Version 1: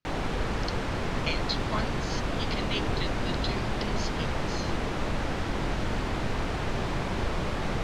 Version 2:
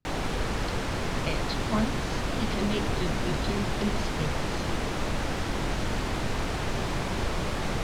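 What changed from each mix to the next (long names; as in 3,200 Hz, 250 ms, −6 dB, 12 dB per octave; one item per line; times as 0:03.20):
speech: add spectral tilt −4.5 dB per octave
master: add high-shelf EQ 6,300 Hz +11 dB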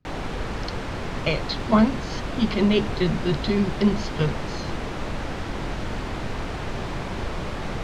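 speech +10.5 dB
master: add high-shelf EQ 6,300 Hz −11 dB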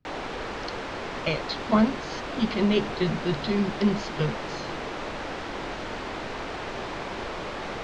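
speech −3.0 dB
background: add three-way crossover with the lows and the highs turned down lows −13 dB, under 270 Hz, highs −14 dB, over 7,600 Hz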